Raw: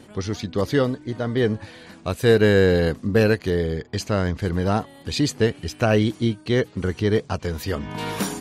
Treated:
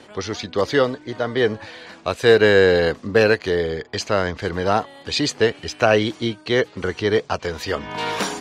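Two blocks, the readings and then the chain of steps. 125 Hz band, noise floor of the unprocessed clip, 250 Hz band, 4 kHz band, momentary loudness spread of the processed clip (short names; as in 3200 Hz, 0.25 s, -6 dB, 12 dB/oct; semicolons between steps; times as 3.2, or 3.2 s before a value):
-5.5 dB, -47 dBFS, -2.5 dB, +5.5 dB, 12 LU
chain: three-band isolator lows -12 dB, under 390 Hz, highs -17 dB, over 7200 Hz; gain +6 dB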